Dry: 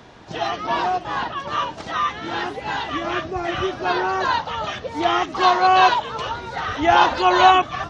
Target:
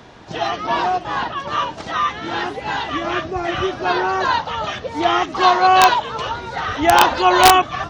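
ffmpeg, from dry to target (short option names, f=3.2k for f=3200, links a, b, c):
-af "aeval=exprs='(mod(1.5*val(0)+1,2)-1)/1.5':c=same,volume=2.5dB"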